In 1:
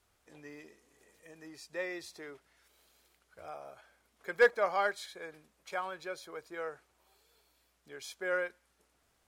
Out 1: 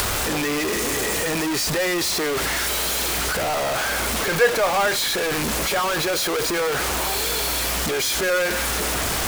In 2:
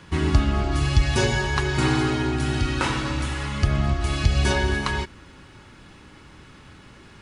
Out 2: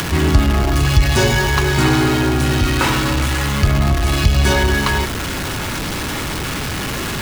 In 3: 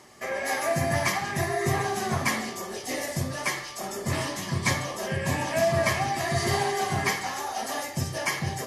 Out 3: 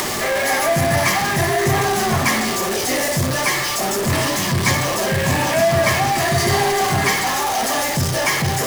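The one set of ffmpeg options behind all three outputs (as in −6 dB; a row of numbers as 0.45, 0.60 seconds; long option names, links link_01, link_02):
-filter_complex "[0:a]aeval=exprs='val(0)+0.5*0.0841*sgn(val(0))':channel_layout=same,acrossover=split=480[link_01][link_02];[link_02]acompressor=mode=upward:threshold=-27dB:ratio=2.5[link_03];[link_01][link_03]amix=inputs=2:normalize=0,volume=4dB"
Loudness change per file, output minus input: +14.0, +6.5, +10.0 LU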